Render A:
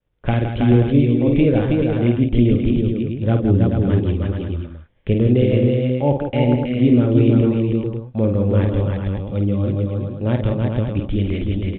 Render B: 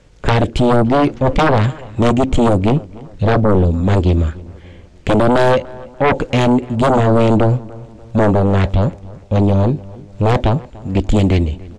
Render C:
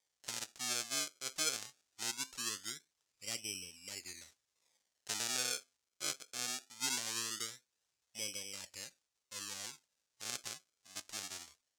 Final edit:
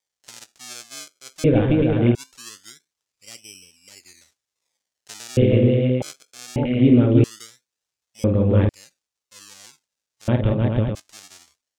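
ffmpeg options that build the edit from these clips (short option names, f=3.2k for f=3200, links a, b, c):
-filter_complex "[0:a]asplit=5[a][b][c][d][e];[2:a]asplit=6[f][g][h][i][j][k];[f]atrim=end=1.442[l];[a]atrim=start=1.438:end=2.152[m];[g]atrim=start=2.148:end=5.372[n];[b]atrim=start=5.368:end=6.022[o];[h]atrim=start=6.018:end=6.562[p];[c]atrim=start=6.558:end=7.242[q];[i]atrim=start=7.238:end=8.242[r];[d]atrim=start=8.238:end=8.692[s];[j]atrim=start=8.688:end=10.282[t];[e]atrim=start=10.278:end=10.952[u];[k]atrim=start=10.948[v];[l][m]acrossfade=d=0.004:c1=hsin:c2=hsin[w];[w][n]acrossfade=d=0.004:c1=hsin:c2=hsin[x];[x][o]acrossfade=d=0.004:c1=hsin:c2=hsin[y];[y][p]acrossfade=d=0.004:c1=hsin:c2=hsin[z];[z][q]acrossfade=d=0.004:c1=hsin:c2=hsin[aa];[aa][r]acrossfade=d=0.004:c1=hsin:c2=hsin[ab];[ab][s]acrossfade=d=0.004:c1=hsin:c2=hsin[ac];[ac][t]acrossfade=d=0.004:c1=hsin:c2=hsin[ad];[ad][u]acrossfade=d=0.004:c1=hsin:c2=hsin[ae];[ae][v]acrossfade=d=0.004:c1=hsin:c2=hsin"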